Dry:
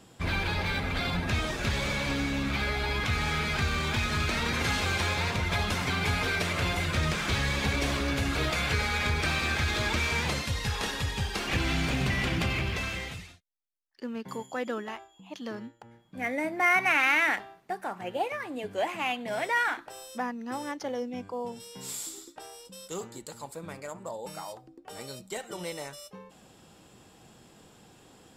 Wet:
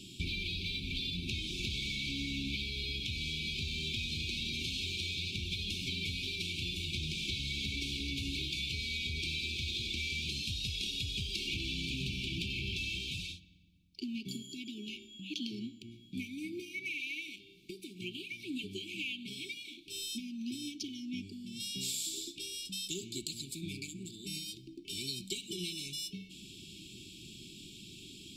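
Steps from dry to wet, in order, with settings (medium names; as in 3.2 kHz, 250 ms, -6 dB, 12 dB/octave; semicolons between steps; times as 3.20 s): peaking EQ 3.7 kHz +10.5 dB 1 oct; compression 10:1, threshold -37 dBFS, peak gain reduction 20.5 dB; brick-wall FIR band-stop 410–2200 Hz; reverberation RT60 1.8 s, pre-delay 5 ms, DRR 16.5 dB; trim +3.5 dB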